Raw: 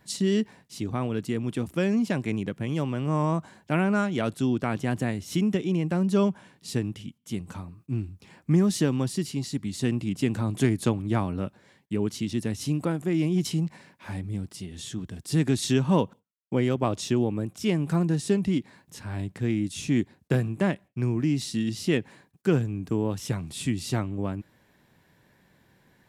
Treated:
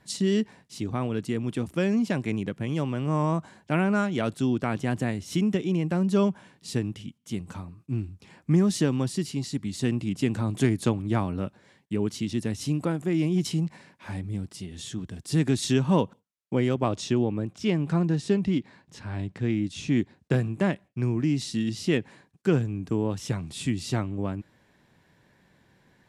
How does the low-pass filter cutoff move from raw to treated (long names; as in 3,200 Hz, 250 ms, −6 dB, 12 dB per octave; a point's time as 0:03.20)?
0:16.70 11,000 Hz
0:17.24 5,700 Hz
0:19.86 5,700 Hz
0:20.46 9,300 Hz